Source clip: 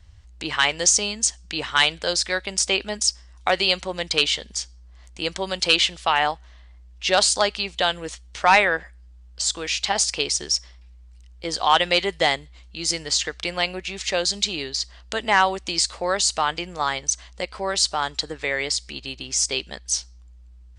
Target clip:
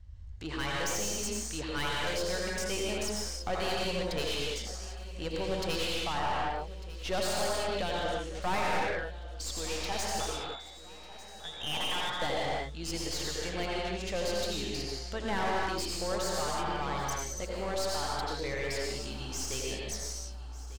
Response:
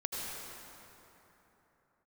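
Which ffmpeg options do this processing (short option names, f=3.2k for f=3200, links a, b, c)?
-filter_complex "[0:a]lowshelf=f=110:g=7.5,asettb=1/sr,asplit=3[a][b][c];[a]atrim=end=10.204[d];[b]atrim=start=10.2:end=12.22,asetpts=PTS-STARTPTS,afade=t=in:d=0.004:c=qsin,afade=t=out:st=2.016:d=0.004:c=qsin,lowpass=f=3.3k:t=q:w=0.5098,lowpass=f=3.3k:t=q:w=0.6013,lowpass=f=3.3k:t=q:w=0.9,lowpass=f=3.3k:t=q:w=2.563,afreqshift=-3900[e];[c]atrim=start=12.216[f];[d][e]acrossfade=d=0.004:c1=hsin:c2=qsin[g];[g][f]acrossfade=d=0.004:c1=qsin:c2=hsin[h];[1:a]atrim=start_sample=2205,afade=t=out:st=0.39:d=0.01,atrim=end_sample=17640[i];[h][i]afir=irnorm=-1:irlink=0,aeval=exprs='(tanh(10*val(0)+0.4)-tanh(0.4))/10':c=same,tiltshelf=f=890:g=4,aecho=1:1:1198|2396|3594|4792:0.141|0.0607|0.0261|0.0112,volume=-7.5dB"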